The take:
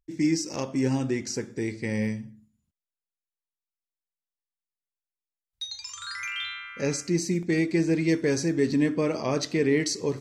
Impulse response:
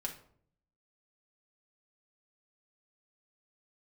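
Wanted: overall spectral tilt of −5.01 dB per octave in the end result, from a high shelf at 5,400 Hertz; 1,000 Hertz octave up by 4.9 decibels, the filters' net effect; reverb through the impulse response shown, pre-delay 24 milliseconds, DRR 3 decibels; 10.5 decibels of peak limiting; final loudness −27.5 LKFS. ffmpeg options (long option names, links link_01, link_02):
-filter_complex "[0:a]equalizer=frequency=1000:width_type=o:gain=6.5,highshelf=frequency=5400:gain=-7,alimiter=limit=-22dB:level=0:latency=1,asplit=2[link_01][link_02];[1:a]atrim=start_sample=2205,adelay=24[link_03];[link_02][link_03]afir=irnorm=-1:irlink=0,volume=-3dB[link_04];[link_01][link_04]amix=inputs=2:normalize=0,volume=2dB"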